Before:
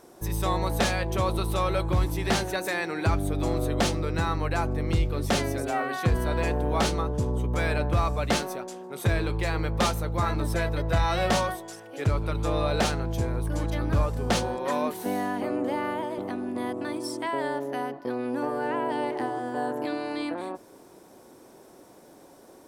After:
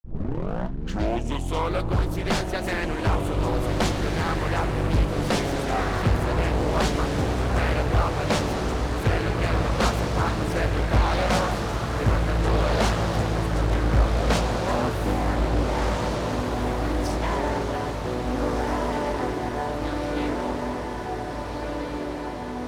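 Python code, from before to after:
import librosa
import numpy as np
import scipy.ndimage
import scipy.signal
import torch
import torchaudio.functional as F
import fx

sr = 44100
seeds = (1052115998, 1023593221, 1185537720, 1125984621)

y = fx.tape_start_head(x, sr, length_s=1.82)
y = fx.high_shelf(y, sr, hz=9900.0, db=-6.5)
y = np.sign(y) * np.maximum(np.abs(y) - 10.0 ** (-46.0 / 20.0), 0.0)
y = fx.echo_diffused(y, sr, ms=1715, feedback_pct=70, wet_db=-3.5)
y = fx.doppler_dist(y, sr, depth_ms=0.98)
y = y * librosa.db_to_amplitude(1.0)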